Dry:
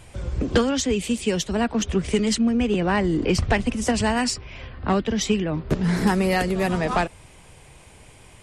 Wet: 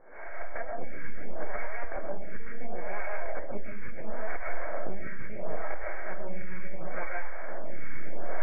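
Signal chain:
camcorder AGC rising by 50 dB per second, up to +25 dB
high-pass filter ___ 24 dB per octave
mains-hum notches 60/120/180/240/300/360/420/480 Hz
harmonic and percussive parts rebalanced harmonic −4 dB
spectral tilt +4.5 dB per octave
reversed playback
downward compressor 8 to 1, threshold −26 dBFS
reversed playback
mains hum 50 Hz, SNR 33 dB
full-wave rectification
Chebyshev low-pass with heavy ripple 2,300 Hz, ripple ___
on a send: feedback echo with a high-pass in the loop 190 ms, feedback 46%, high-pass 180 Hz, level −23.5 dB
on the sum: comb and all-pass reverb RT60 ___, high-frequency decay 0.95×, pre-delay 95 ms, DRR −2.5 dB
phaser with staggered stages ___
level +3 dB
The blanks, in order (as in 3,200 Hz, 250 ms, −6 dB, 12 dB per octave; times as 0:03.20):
50 Hz, 9 dB, 0.5 s, 0.73 Hz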